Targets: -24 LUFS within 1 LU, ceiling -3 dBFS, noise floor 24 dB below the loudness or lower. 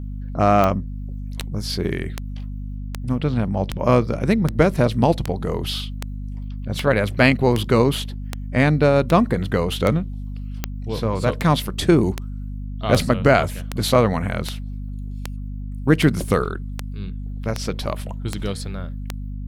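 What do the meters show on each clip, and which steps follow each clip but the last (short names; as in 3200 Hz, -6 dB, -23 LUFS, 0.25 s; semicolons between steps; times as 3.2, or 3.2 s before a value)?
clicks 25; hum 50 Hz; harmonics up to 250 Hz; hum level -27 dBFS; loudness -21.0 LUFS; peak -2.0 dBFS; loudness target -24.0 LUFS
-> de-click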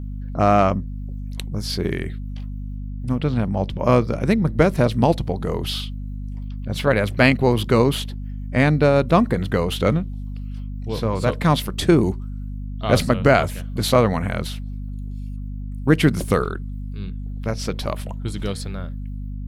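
clicks 0; hum 50 Hz; harmonics up to 250 Hz; hum level -27 dBFS
-> de-hum 50 Hz, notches 5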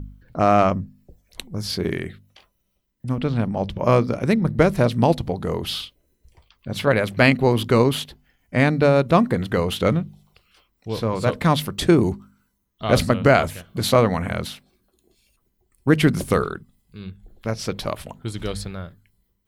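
hum none; loudness -21.0 LUFS; peak -2.5 dBFS; loudness target -24.0 LUFS
-> gain -3 dB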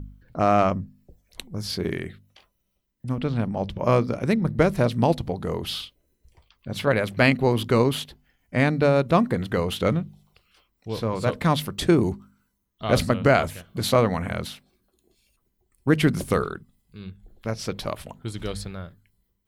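loudness -24.0 LUFS; peak -5.5 dBFS; noise floor -74 dBFS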